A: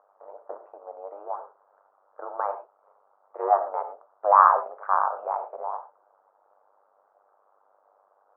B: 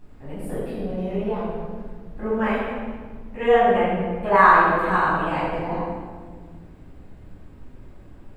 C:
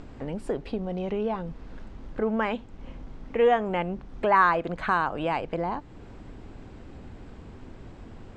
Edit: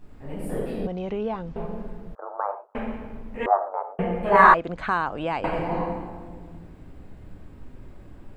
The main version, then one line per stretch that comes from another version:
B
0.87–1.56 s: from C
2.15–2.75 s: from A
3.46–3.99 s: from A
4.54–5.44 s: from C

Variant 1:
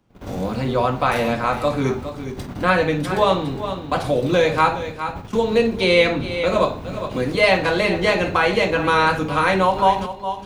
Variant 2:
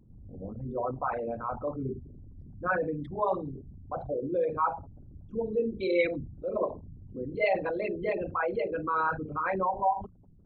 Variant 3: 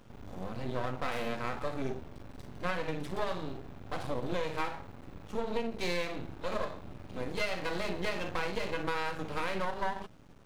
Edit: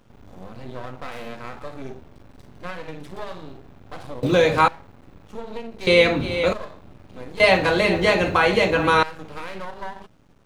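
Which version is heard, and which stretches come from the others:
3
4.23–4.68 s: from 1
5.87–6.53 s: from 1
7.40–9.03 s: from 1
not used: 2

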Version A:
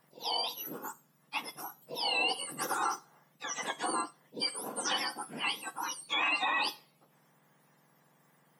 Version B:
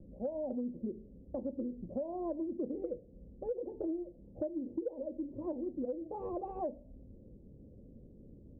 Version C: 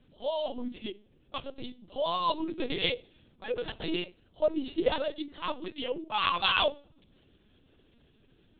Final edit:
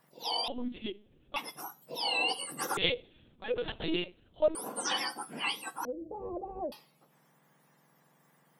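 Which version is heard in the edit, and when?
A
0.48–1.36 s: from C
2.77–4.55 s: from C
5.85–6.72 s: from B

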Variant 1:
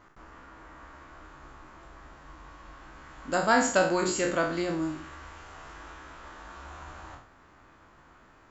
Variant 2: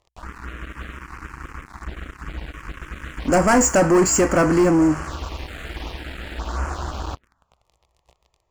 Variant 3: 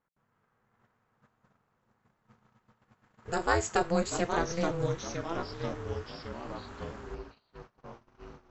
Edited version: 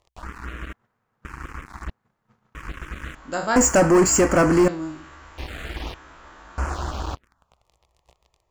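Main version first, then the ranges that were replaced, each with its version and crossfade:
2
0.73–1.25 s: from 3
1.90–2.55 s: from 3
3.15–3.56 s: from 1
4.68–5.38 s: from 1
5.94–6.58 s: from 1

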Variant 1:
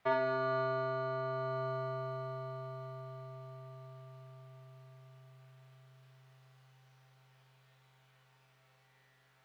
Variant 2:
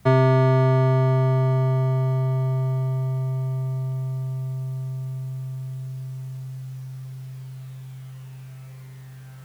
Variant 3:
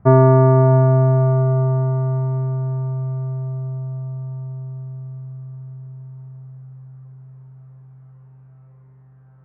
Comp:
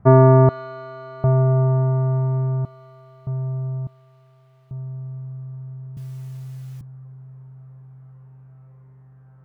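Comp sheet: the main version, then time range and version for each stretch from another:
3
0.49–1.24 s: from 1
2.65–3.27 s: from 1
3.87–4.71 s: from 1
5.97–6.81 s: from 2

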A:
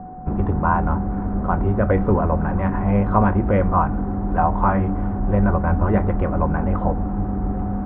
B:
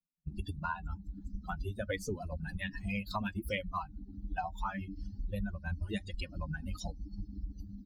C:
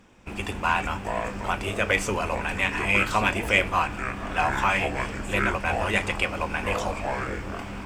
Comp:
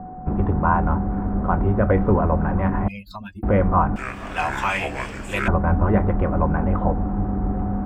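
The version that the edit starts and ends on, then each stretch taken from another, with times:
A
2.88–3.43 s: from B
3.96–5.48 s: from C

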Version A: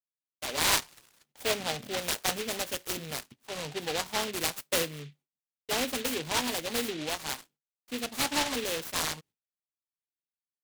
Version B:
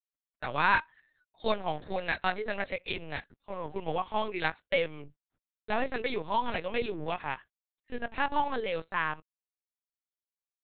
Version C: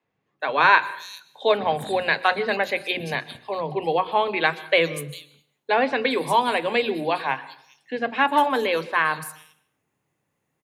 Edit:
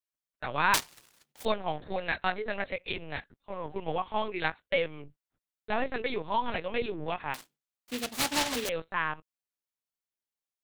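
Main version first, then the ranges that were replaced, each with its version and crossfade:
B
0.74–1.45 s: from A
7.34–8.69 s: from A
not used: C

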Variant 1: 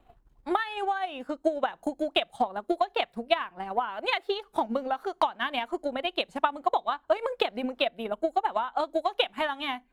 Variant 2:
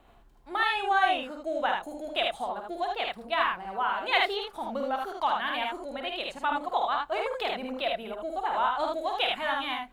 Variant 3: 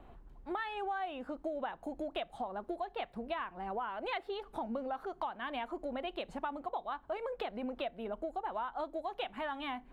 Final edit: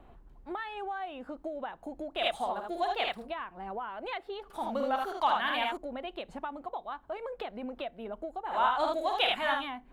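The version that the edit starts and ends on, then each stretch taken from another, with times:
3
2.21–3.25 s: from 2, crossfade 0.10 s
4.50–5.77 s: from 2
8.53–9.62 s: from 2, crossfade 0.16 s
not used: 1

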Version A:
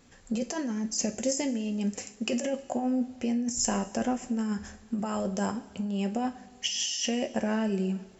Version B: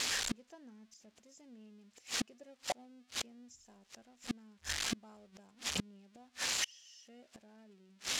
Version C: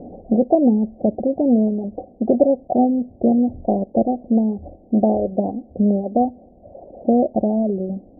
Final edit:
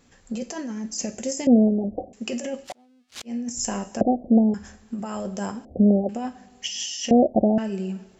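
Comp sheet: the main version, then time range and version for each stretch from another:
A
1.47–2.13 s: from C
2.68–3.30 s: from B, crossfade 0.10 s
4.01–4.54 s: from C
5.65–6.09 s: from C
7.11–7.58 s: from C

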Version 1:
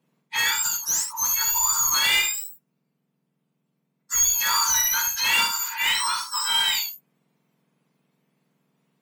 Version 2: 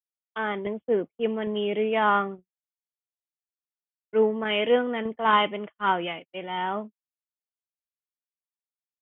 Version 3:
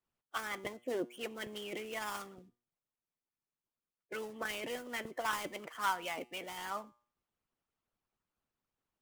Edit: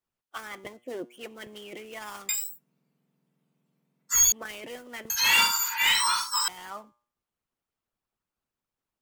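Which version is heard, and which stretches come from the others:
3
2.29–4.32 s: from 1
5.10–6.48 s: from 1
not used: 2

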